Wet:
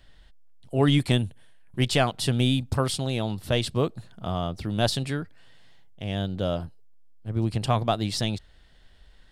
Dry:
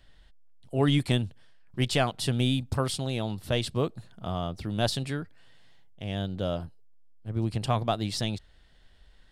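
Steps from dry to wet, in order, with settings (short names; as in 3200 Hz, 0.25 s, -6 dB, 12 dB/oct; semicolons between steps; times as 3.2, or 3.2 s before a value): 1.18–1.79 thirty-one-band EQ 1250 Hz -5 dB, 5000 Hz -11 dB, 10000 Hz +12 dB; gain +3 dB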